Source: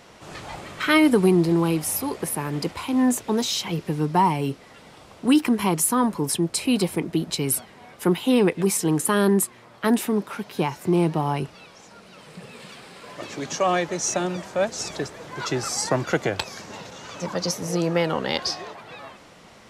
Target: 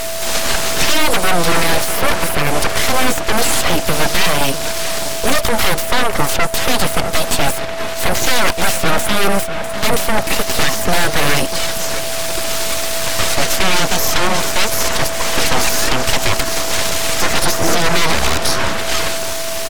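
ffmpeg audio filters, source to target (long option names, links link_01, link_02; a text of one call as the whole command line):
ffmpeg -i in.wav -filter_complex "[0:a]bass=frequency=250:gain=-7,treble=frequency=4000:gain=12,acrossover=split=420|1100|2500[link_01][link_02][link_03][link_04];[link_01]acompressor=threshold=-35dB:ratio=4[link_05];[link_02]acompressor=threshold=-32dB:ratio=4[link_06];[link_03]acompressor=threshold=-47dB:ratio=4[link_07];[link_04]acompressor=threshold=-40dB:ratio=4[link_08];[link_05][link_06][link_07][link_08]amix=inputs=4:normalize=0,aphaser=in_gain=1:out_gain=1:delay=4.3:decay=0.45:speed=1.3:type=triangular,aeval=exprs='0.0501*(abs(mod(val(0)/0.0501+3,4)-2)-1)':channel_layout=same,equalizer=frequency=420:width=0.34:gain=-6,asplit=2[link_09][link_10];[link_10]adelay=647,lowpass=frequency=1800:poles=1,volume=-10.5dB,asplit=2[link_11][link_12];[link_12]adelay=647,lowpass=frequency=1800:poles=1,volume=0.5,asplit=2[link_13][link_14];[link_14]adelay=647,lowpass=frequency=1800:poles=1,volume=0.5,asplit=2[link_15][link_16];[link_16]adelay=647,lowpass=frequency=1800:poles=1,volume=0.5,asplit=2[link_17][link_18];[link_18]adelay=647,lowpass=frequency=1800:poles=1,volume=0.5[link_19];[link_09][link_11][link_13][link_15][link_17][link_19]amix=inputs=6:normalize=0,acrossover=split=4800[link_20][link_21];[link_21]acompressor=threshold=-47dB:ratio=4:attack=1:release=60[link_22];[link_20][link_22]amix=inputs=2:normalize=0,aeval=exprs='abs(val(0))':channel_layout=same,aeval=exprs='val(0)+0.00282*sin(2*PI*660*n/s)':channel_layout=same,alimiter=level_in=28dB:limit=-1dB:release=50:level=0:latency=1,volume=-1dB" -ar 48000 -c:a libmp3lame -b:a 96k out.mp3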